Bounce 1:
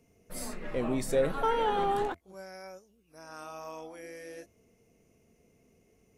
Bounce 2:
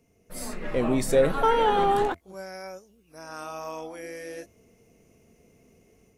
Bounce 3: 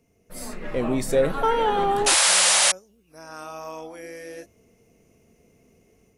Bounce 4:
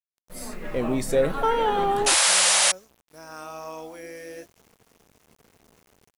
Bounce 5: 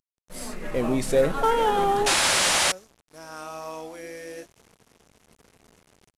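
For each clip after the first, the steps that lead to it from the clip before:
automatic gain control gain up to 6.5 dB
sound drawn into the spectrogram noise, 0:02.06–0:02.72, 500–11,000 Hz −18 dBFS
bit reduction 9 bits; level −1 dB
variable-slope delta modulation 64 kbit/s; level +1 dB

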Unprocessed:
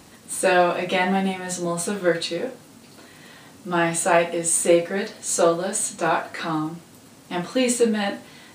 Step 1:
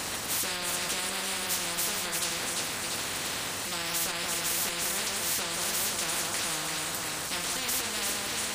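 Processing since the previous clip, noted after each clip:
delay that swaps between a low-pass and a high-pass 171 ms, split 1,300 Hz, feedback 57%, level −7 dB
brickwall limiter −14.5 dBFS, peak gain reduction 10.5 dB
every bin compressed towards the loudest bin 10 to 1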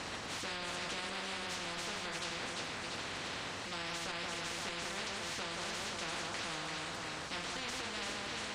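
high-frequency loss of the air 120 metres
level −5 dB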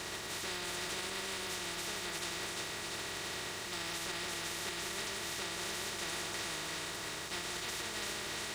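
compressing power law on the bin magnitudes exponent 0.46
notch comb filter 260 Hz
hollow resonant body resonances 370/1,900/3,700 Hz, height 7 dB
level +1.5 dB

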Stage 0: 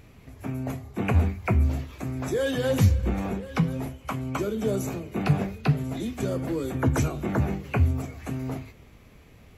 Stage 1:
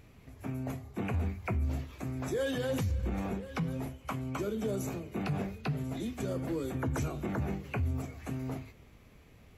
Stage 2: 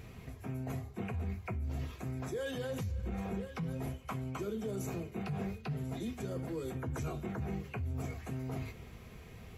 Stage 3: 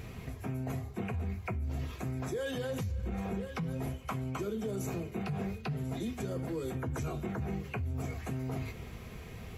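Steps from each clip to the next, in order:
brickwall limiter −19 dBFS, peak gain reduction 10 dB; level −5.5 dB
reversed playback; downward compressor 5 to 1, threshold −43 dBFS, peak gain reduction 13.5 dB; reversed playback; notch comb filter 290 Hz; level +7.5 dB
downward compressor 2 to 1, threshold −40 dBFS, peak gain reduction 4.5 dB; level +5.5 dB

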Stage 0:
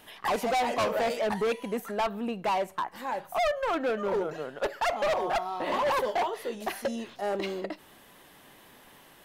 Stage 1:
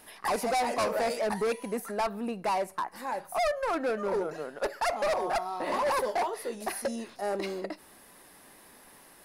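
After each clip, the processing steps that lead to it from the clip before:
thirty-one-band graphic EQ 125 Hz −10 dB, 3,150 Hz −8 dB, 5,000 Hz +5 dB, 10,000 Hz +11 dB
level −1 dB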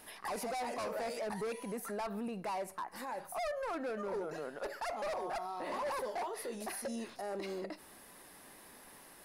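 brickwall limiter −31.5 dBFS, peak gain reduction 10.5 dB
level −1.5 dB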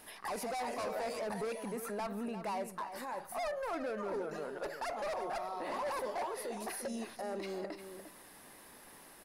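slap from a distant wall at 60 metres, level −9 dB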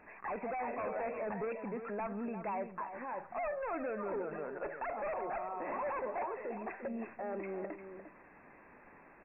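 linear-phase brick-wall low-pass 2,700 Hz

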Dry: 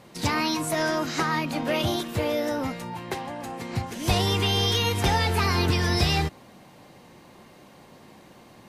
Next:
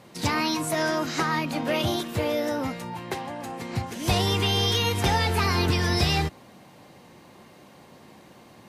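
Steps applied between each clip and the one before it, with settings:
high-pass filter 52 Hz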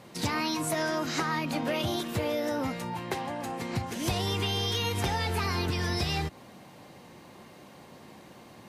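downward compressor, threshold −26 dBFS, peak gain reduction 8.5 dB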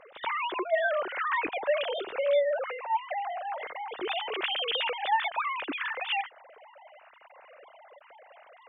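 three sine waves on the formant tracks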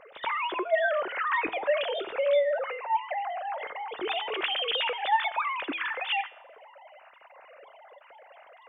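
tuned comb filter 110 Hz, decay 0.7 s, harmonics all, mix 50%
level +6.5 dB

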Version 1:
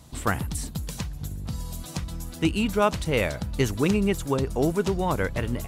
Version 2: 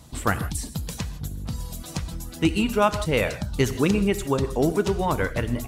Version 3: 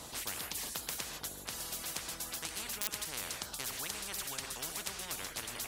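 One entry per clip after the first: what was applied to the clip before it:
reverb reduction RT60 0.52 s; on a send at −10.5 dB: convolution reverb, pre-delay 3 ms; on the sum: level +2 dB
wrap-around overflow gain 7.5 dB; every bin compressed towards the loudest bin 10 to 1; level −6.5 dB

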